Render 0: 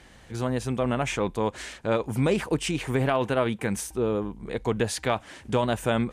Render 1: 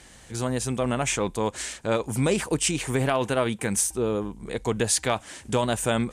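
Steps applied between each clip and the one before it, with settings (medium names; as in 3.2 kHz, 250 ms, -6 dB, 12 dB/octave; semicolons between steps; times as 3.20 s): peaking EQ 8.3 kHz +12 dB 1.4 oct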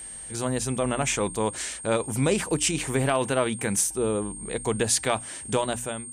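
fade out at the end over 0.58 s; whistle 8.6 kHz -37 dBFS; hum notches 60/120/180/240/300 Hz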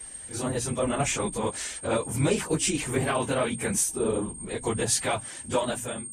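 phase randomisation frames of 50 ms; trim -1.5 dB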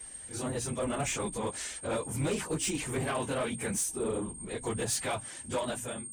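saturation -20.5 dBFS, distortion -15 dB; trim -4 dB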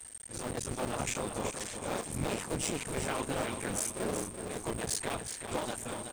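cycle switcher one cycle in 2, muted; feedback delay 375 ms, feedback 36%, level -7.5 dB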